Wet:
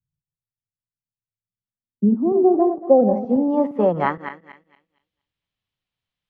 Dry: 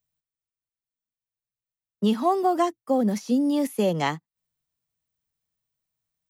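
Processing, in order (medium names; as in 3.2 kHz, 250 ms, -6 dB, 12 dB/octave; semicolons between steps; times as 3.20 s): backward echo that repeats 116 ms, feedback 47%, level -9.5 dB; low-pass sweep 150 Hz -> 3.2 kHz, 1.27–5.09 s; 2.35–3.93 s: dynamic bell 750 Hz, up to +5 dB, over -30 dBFS, Q 1.2; trim +1 dB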